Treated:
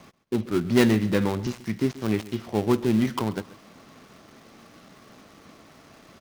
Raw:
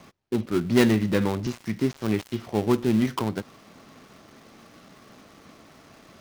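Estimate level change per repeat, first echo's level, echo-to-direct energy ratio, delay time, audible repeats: -11.5 dB, -18.5 dB, -18.0 dB, 134 ms, 2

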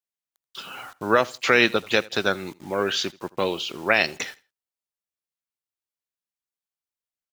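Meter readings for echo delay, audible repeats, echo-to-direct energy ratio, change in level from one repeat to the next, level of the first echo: 82 ms, 2, -22.5 dB, -11.5 dB, -23.0 dB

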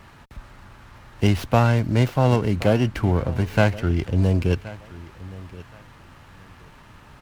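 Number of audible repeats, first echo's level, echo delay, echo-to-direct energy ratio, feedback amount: 2, -19.0 dB, 1073 ms, -19.0 dB, 23%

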